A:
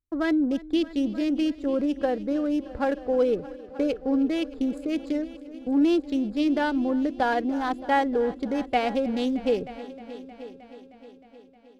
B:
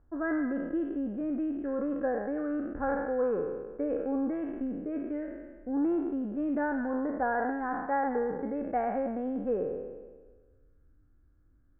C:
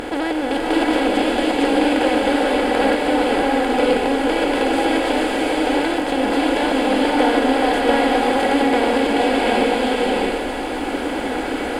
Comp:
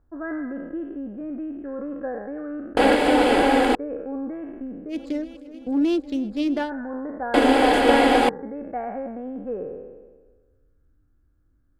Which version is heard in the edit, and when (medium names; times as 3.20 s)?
B
2.77–3.75 s: from C
4.93–6.66 s: from A, crossfade 0.10 s
7.34–8.29 s: from C